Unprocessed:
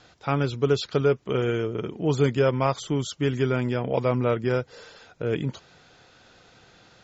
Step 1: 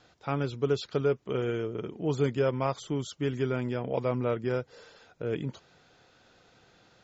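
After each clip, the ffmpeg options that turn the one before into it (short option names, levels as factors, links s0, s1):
-af "equalizer=f=400:t=o:w=2.8:g=2.5,volume=0.422"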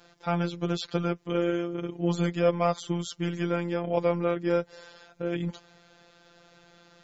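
-af "afftfilt=real='hypot(re,im)*cos(PI*b)':imag='0':win_size=1024:overlap=0.75,volume=2.24"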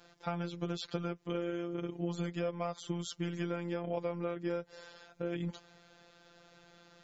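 -af "acompressor=threshold=0.0398:ratio=6,volume=0.668"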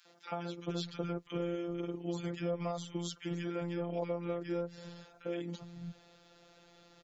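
-filter_complex "[0:a]acrossover=split=170|1400[s0][s1][s2];[s1]adelay=50[s3];[s0]adelay=410[s4];[s4][s3][s2]amix=inputs=3:normalize=0"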